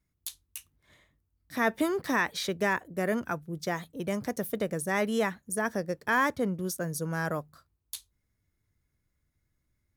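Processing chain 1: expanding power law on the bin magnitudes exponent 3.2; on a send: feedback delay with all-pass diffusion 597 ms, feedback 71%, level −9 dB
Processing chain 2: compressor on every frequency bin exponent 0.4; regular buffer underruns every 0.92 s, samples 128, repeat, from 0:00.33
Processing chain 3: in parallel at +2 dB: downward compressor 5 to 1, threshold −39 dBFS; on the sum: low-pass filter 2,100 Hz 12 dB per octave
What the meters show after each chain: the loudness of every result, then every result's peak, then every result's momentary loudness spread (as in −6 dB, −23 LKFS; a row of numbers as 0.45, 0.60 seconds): −31.5, −25.5, −29.0 LKFS; −16.0, −7.0, −13.0 dBFS; 17, 20, 6 LU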